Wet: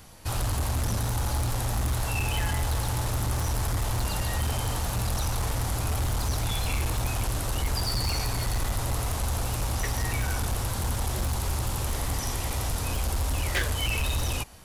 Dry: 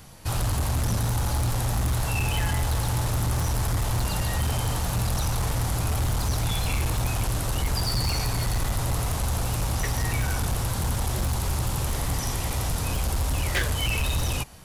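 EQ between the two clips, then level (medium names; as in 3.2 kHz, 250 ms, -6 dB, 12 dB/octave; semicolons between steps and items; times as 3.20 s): peaking EQ 150 Hz -6.5 dB 0.53 oct; -1.5 dB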